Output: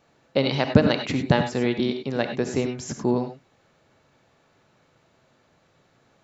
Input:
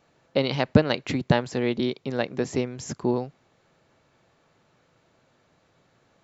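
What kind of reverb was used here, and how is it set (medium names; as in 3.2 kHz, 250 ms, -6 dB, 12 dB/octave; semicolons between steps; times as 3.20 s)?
gated-style reverb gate 120 ms rising, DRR 6.5 dB; trim +1 dB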